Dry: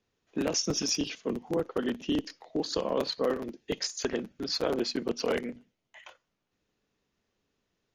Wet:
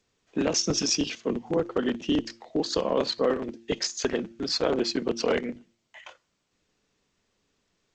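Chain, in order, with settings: de-hum 114.9 Hz, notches 3; trim +4 dB; G.722 64 kbps 16 kHz

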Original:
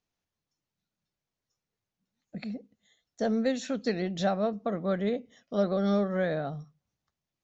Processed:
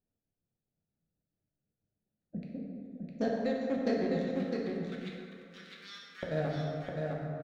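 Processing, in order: local Wiener filter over 41 samples; 4.20–6.23 s: inverse Chebyshev high-pass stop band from 450 Hz, stop band 70 dB; compression, threshold -30 dBFS, peak gain reduction 8 dB; trance gate "xx.x.xx..x." 183 bpm -12 dB; delay 657 ms -3.5 dB; plate-style reverb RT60 2.6 s, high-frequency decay 0.45×, DRR -2.5 dB

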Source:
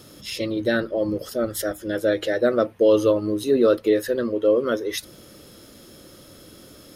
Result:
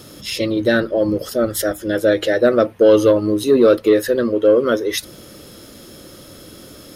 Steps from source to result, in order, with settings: saturation -8 dBFS, distortion -24 dB; trim +6.5 dB

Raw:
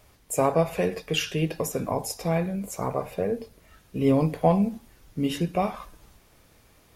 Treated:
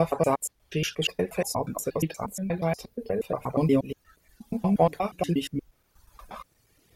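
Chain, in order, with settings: slices played last to first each 119 ms, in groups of 6; reverb removal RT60 1.4 s

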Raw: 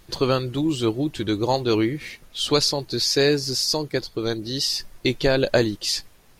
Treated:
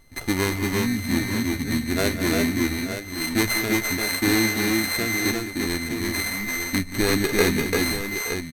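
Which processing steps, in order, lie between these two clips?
sorted samples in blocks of 16 samples; multi-tap echo 132/157/256/267/654/687 ms -15.5/-11.5/-3.5/-7/-15.5/-9 dB; tape speed -25%; trim -3 dB

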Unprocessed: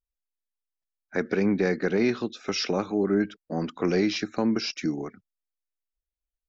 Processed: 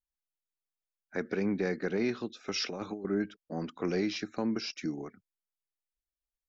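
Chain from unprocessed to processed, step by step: 2.54–3.05 s: compressor with a negative ratio -28 dBFS, ratio -0.5; trim -7 dB

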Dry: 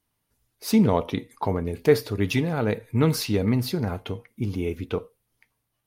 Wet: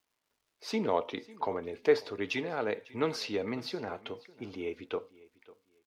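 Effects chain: three-band isolator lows -20 dB, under 310 Hz, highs -24 dB, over 5.9 kHz; crackle 310 per s -60 dBFS; feedback delay 548 ms, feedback 23%, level -21 dB; trim -4.5 dB

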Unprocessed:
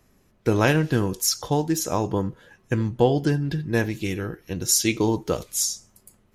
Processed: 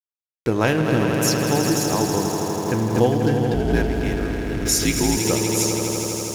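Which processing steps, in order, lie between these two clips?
hum notches 50/100/150 Hz; on a send: echo with a slow build-up 81 ms, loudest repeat 5, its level -8 dB; 3.54–5.17 s: on the sum: frequency shift -60 Hz; hysteresis with a dead band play -30 dBFS; swell ahead of each attack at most 81 dB/s

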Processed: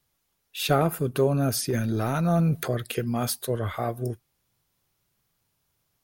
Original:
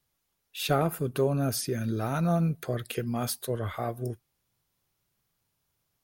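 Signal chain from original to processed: 1.70–2.68 s: transient shaper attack -6 dB, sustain +9 dB; trim +3.5 dB

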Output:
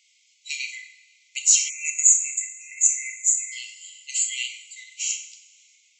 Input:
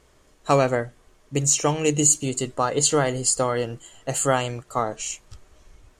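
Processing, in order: brick-wall FIR band-pass 2–8 kHz; two-slope reverb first 0.54 s, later 1.9 s, from -16 dB, DRR 3 dB; spectral selection erased 1.69–3.52 s, 2.7–5.8 kHz; trim +3 dB

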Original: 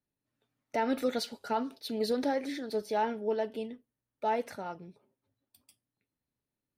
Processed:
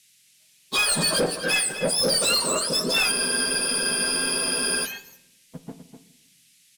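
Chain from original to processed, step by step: spectrum inverted on a logarithmic axis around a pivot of 1.5 kHz; high-pass 160 Hz 6 dB/octave; waveshaping leveller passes 1; in parallel at -3 dB: peak limiter -31.5 dBFS, peak gain reduction 9.5 dB; on the sum: waveshaping leveller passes 2; band noise 2.1–12 kHz -63 dBFS; echo from a far wall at 43 m, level -9 dB; on a send at -11.5 dB: reverberation RT60 0.90 s, pre-delay 6 ms; on the sum: spectral freeze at 3.13 s, 1.70 s; trim +3.5 dB

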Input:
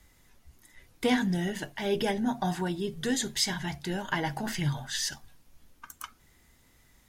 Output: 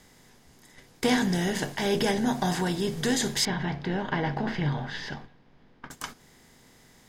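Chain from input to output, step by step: spectral levelling over time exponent 0.6; gate -39 dBFS, range -11 dB; 3.45–5.91 s: distance through air 320 m

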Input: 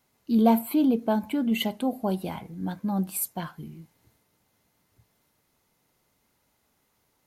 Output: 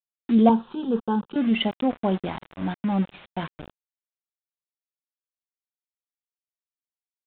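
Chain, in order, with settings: small samples zeroed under -34.5 dBFS; 0.49–1.36 s: static phaser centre 430 Hz, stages 8; resampled via 8 kHz; trim +3.5 dB

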